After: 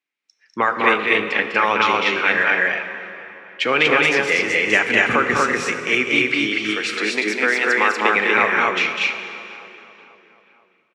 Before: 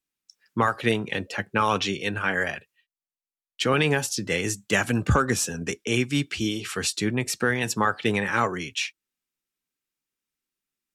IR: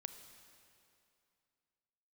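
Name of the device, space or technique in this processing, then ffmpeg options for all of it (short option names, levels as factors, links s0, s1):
station announcement: -filter_complex "[0:a]asettb=1/sr,asplit=3[s0][s1][s2];[s0]atrim=end=6.534[s3];[s1]atrim=start=6.53:end=8.16,asetpts=PTS-STARTPTS,afade=t=in:d=0.004:c=qsin,afade=t=out:st=1.626:d=0.004:c=qsin,highpass=f=230:w=0.5412,highpass=f=230:w=1.3066[s4];[s2]atrim=start=8.156[s5];[s3][s4]acrossfade=d=0.004:c1=hsin:c2=qsin[s6];[s6][s5]acrossfade=d=0.004:c1=qsin:c2=hsin,highpass=320,lowpass=3500,equalizer=f=2200:t=o:w=0.48:g=9.5,highshelf=f=9300:g=5.5,aecho=1:1:201.2|239.1:0.562|0.891[s7];[1:a]atrim=start_sample=2205[s8];[s7][s8]afir=irnorm=-1:irlink=0,asplit=2[s9][s10];[s10]adelay=486,lowpass=f=2700:p=1,volume=0.1,asplit=2[s11][s12];[s12]adelay=486,lowpass=f=2700:p=1,volume=0.54,asplit=2[s13][s14];[s14]adelay=486,lowpass=f=2700:p=1,volume=0.54,asplit=2[s15][s16];[s16]adelay=486,lowpass=f=2700:p=1,volume=0.54[s17];[s9][s11][s13][s15][s17]amix=inputs=5:normalize=0,volume=2.37"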